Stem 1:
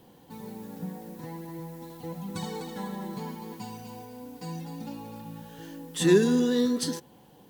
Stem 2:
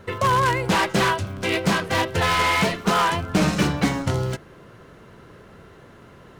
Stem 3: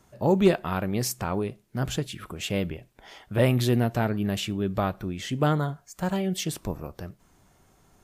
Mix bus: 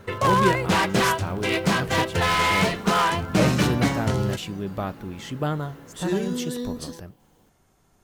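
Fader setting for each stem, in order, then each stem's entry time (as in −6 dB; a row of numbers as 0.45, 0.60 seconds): −6.5, −1.0, −3.0 decibels; 0.00, 0.00, 0.00 seconds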